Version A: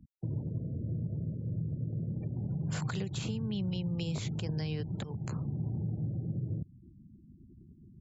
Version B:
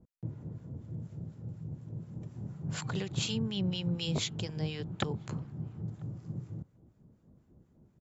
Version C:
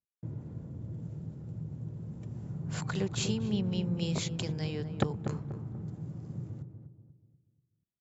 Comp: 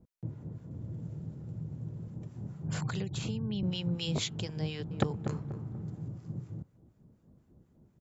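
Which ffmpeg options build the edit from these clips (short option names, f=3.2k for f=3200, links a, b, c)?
-filter_complex "[2:a]asplit=2[a][b];[1:a]asplit=4[c][d][e][f];[c]atrim=end=0.712[g];[a]atrim=start=0.708:end=2.082[h];[d]atrim=start=2.078:end=2.682[i];[0:a]atrim=start=2.678:end=3.632[j];[e]atrim=start=3.628:end=4.912[k];[b]atrim=start=4.908:end=6.082[l];[f]atrim=start=6.078[m];[g][h]acrossfade=d=0.004:c1=hsin:c2=hsin[n];[n][i]acrossfade=d=0.004:c1=hsin:c2=hsin[o];[o][j]acrossfade=d=0.004:c1=hsin:c2=hsin[p];[p][k]acrossfade=d=0.004:c1=hsin:c2=hsin[q];[q][l]acrossfade=d=0.004:c1=hsin:c2=hsin[r];[r][m]acrossfade=d=0.004:c1=hsin:c2=hsin"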